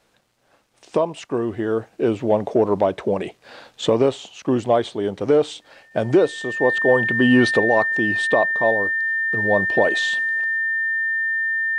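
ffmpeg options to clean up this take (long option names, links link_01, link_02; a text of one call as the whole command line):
ffmpeg -i in.wav -af "bandreject=frequency=1800:width=30" out.wav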